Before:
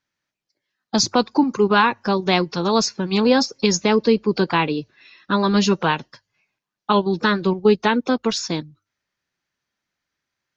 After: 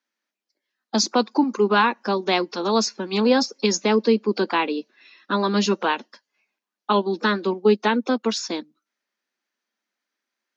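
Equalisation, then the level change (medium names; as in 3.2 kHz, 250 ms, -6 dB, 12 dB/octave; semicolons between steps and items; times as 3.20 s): elliptic high-pass 210 Hz, stop band 40 dB; -1.5 dB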